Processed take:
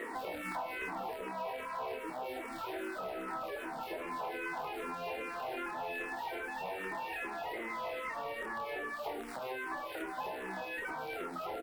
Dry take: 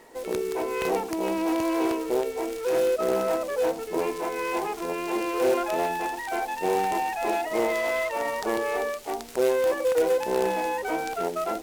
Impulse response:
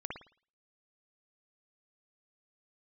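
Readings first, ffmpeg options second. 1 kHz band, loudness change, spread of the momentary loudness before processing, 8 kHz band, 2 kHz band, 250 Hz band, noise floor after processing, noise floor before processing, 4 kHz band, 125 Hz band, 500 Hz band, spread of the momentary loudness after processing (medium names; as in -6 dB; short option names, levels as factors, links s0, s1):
-10.0 dB, -13.0 dB, 6 LU, -18.0 dB, -6.5 dB, -16.0 dB, -43 dBFS, -37 dBFS, -10.0 dB, -11.0 dB, -17.0 dB, 2 LU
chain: -filter_complex "[0:a]equalizer=f=6400:w=1.9:g=-11.5,alimiter=level_in=1.06:limit=0.0631:level=0:latency=1:release=12,volume=0.944,highshelf=f=8800:g=4,asplit=2[s0][s1];[s1]adelay=27,volume=0.631[s2];[s0][s2]amix=inputs=2:normalize=0,asplit=2[s3][s4];[1:a]atrim=start_sample=2205,asetrate=70560,aresample=44100,highshelf=f=12000:g=11.5[s5];[s4][s5]afir=irnorm=-1:irlink=0,volume=0.376[s6];[s3][s6]amix=inputs=2:normalize=0,afftfilt=real='re*lt(hypot(re,im),0.178)':imag='im*lt(hypot(re,im),0.178)':win_size=1024:overlap=0.75,asplit=2[s7][s8];[s8]highpass=f=720:p=1,volume=7.08,asoftclip=type=tanh:threshold=0.119[s9];[s7][s9]amix=inputs=2:normalize=0,lowpass=f=1700:p=1,volume=0.501,acompressor=threshold=0.0112:ratio=16,asplit=2[s10][s11];[s11]afreqshift=-2.5[s12];[s10][s12]amix=inputs=2:normalize=1,volume=1.78"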